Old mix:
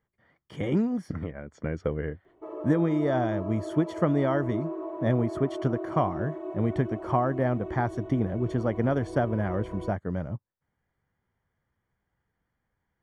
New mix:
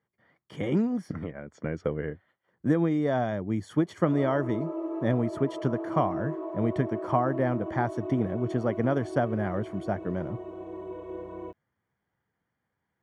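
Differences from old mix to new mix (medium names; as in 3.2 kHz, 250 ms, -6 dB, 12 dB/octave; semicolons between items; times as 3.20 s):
background: entry +1.60 s; master: add high-pass 110 Hz 12 dB/octave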